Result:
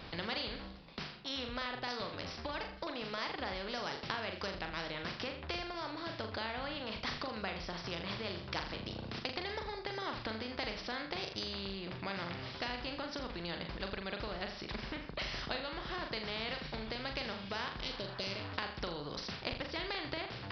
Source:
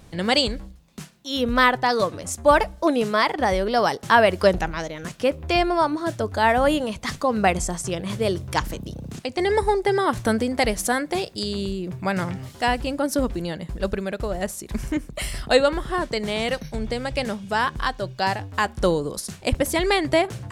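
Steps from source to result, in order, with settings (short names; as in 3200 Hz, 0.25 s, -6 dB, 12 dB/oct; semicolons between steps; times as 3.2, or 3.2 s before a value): spectral repair 17.8–18.5, 660–2000 Hz; compressor, threshold -28 dBFS, peak gain reduction 16.5 dB; flutter echo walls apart 7 m, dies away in 0.32 s; downsampling 11025 Hz; spectral compressor 2:1; gain -4.5 dB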